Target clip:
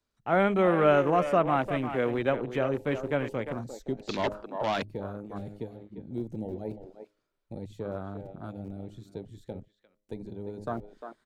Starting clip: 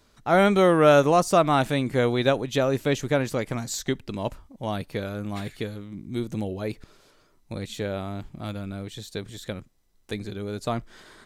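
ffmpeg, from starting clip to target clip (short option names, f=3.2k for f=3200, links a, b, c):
-filter_complex "[0:a]bandreject=f=103.9:t=h:w=4,bandreject=f=207.8:t=h:w=4,bandreject=f=311.7:t=h:w=4,bandreject=f=415.6:t=h:w=4,bandreject=f=519.5:t=h:w=4,bandreject=f=623.4:t=h:w=4,acrossover=split=120|860|3100[a][b][c][d];[a]aeval=exprs='(mod(59.6*val(0)+1,2)-1)/59.6':c=same[e];[e][b][c][d]amix=inputs=4:normalize=0,asplit=2[f][g];[g]adelay=350,highpass=300,lowpass=3.4k,asoftclip=type=hard:threshold=-15.5dB,volume=-8dB[h];[f][h]amix=inputs=2:normalize=0,asplit=3[i][j][k];[i]afade=t=out:st=3.97:d=0.02[l];[j]asplit=2[m][n];[n]highpass=f=720:p=1,volume=21dB,asoftclip=type=tanh:threshold=-13.5dB[o];[m][o]amix=inputs=2:normalize=0,lowpass=f=7k:p=1,volume=-6dB,afade=t=in:st=3.97:d=0.02,afade=t=out:st=4.82:d=0.02[p];[k]afade=t=in:st=4.82:d=0.02[q];[l][p][q]amix=inputs=3:normalize=0,afwtdn=0.0224,volume=-5dB"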